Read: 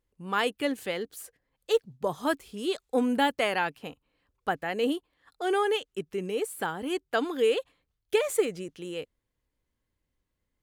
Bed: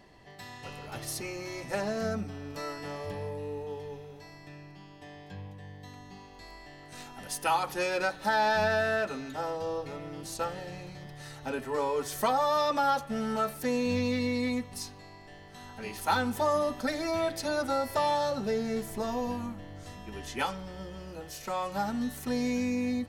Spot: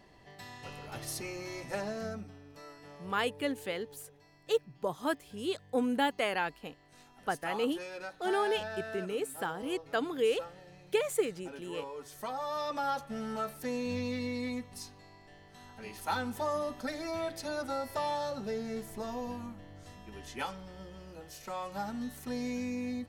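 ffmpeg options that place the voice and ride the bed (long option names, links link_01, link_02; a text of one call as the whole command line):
ffmpeg -i stem1.wav -i stem2.wav -filter_complex "[0:a]adelay=2800,volume=-4.5dB[link_01];[1:a]volume=4.5dB,afade=type=out:start_time=1.56:duration=0.89:silence=0.298538,afade=type=in:start_time=12.17:duration=0.76:silence=0.446684[link_02];[link_01][link_02]amix=inputs=2:normalize=0" out.wav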